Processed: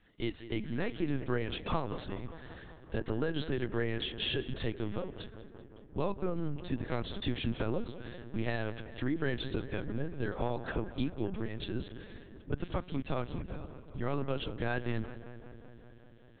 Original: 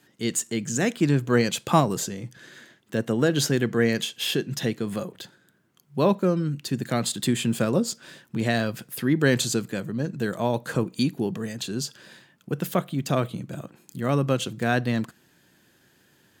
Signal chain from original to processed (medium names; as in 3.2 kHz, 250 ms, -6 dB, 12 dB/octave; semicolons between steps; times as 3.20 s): high-pass 49 Hz 12 dB/octave; compression 4:1, threshold -24 dBFS, peak gain reduction 10.5 dB; on a send: filtered feedback delay 192 ms, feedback 77%, low-pass 2.9 kHz, level -13.5 dB; on the sum: LPC vocoder at 8 kHz pitch kept; trim -5 dB